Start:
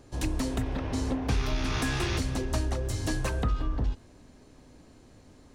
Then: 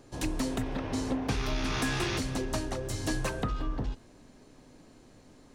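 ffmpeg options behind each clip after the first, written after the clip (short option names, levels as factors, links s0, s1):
-af "equalizer=f=66:w=2:g=-14"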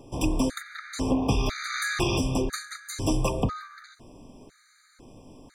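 -af "bandreject=f=2900:w=19,afftfilt=real='re*gt(sin(2*PI*1*pts/sr)*(1-2*mod(floor(b*sr/1024/1200),2)),0)':imag='im*gt(sin(2*PI*1*pts/sr)*(1-2*mod(floor(b*sr/1024/1200),2)),0)':win_size=1024:overlap=0.75,volume=2.24"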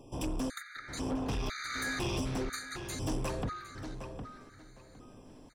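-filter_complex "[0:a]asoftclip=type=tanh:threshold=0.0596,asplit=2[s0][s1];[s1]adelay=760,lowpass=f=3400:p=1,volume=0.398,asplit=2[s2][s3];[s3]adelay=760,lowpass=f=3400:p=1,volume=0.22,asplit=2[s4][s5];[s5]adelay=760,lowpass=f=3400:p=1,volume=0.22[s6];[s0][s2][s4][s6]amix=inputs=4:normalize=0,volume=0.562"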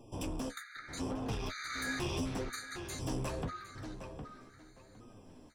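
-af "flanger=delay=8.3:depth=7.4:regen=41:speed=0.79:shape=triangular,volume=1.19"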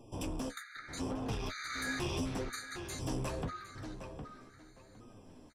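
-af "aresample=32000,aresample=44100"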